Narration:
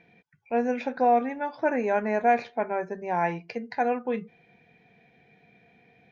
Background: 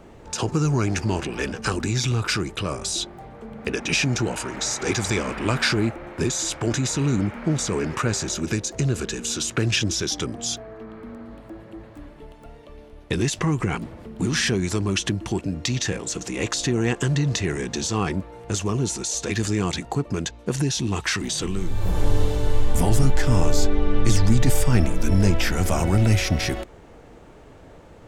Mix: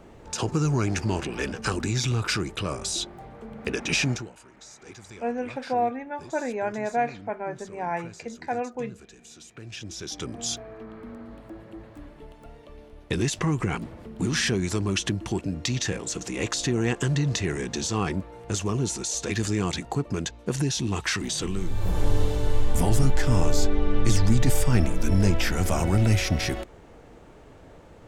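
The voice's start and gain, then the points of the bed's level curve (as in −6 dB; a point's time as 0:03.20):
4.70 s, −3.5 dB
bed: 0:04.11 −2.5 dB
0:04.32 −21.5 dB
0:09.56 −21.5 dB
0:10.41 −2.5 dB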